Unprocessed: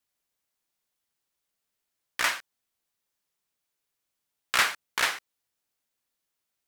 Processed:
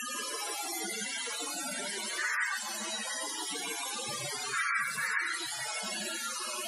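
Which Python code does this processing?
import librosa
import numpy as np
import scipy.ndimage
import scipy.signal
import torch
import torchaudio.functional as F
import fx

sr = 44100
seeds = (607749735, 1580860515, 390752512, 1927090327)

p1 = fx.delta_mod(x, sr, bps=64000, step_db=-21.0)
p2 = fx.highpass(p1, sr, hz=50.0, slope=6)
p3 = fx.spec_topn(p2, sr, count=8)
p4 = p3 + fx.echo_bbd(p3, sr, ms=145, stages=2048, feedback_pct=69, wet_db=-22.0, dry=0)
p5 = fx.rev_gated(p4, sr, seeds[0], gate_ms=200, shape='rising', drr_db=-4.5)
y = fx.band_squash(p5, sr, depth_pct=70)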